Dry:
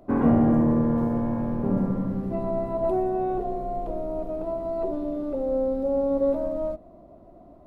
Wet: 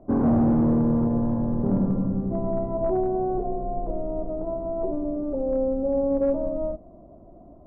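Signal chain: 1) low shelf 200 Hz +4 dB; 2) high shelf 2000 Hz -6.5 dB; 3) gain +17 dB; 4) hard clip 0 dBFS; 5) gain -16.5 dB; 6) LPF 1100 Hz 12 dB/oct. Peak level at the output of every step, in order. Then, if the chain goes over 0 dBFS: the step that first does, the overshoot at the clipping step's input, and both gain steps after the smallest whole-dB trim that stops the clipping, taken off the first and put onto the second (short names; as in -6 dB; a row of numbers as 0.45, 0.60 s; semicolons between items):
-8.0, -8.0, +9.0, 0.0, -16.5, -16.0 dBFS; step 3, 9.0 dB; step 3 +8 dB, step 5 -7.5 dB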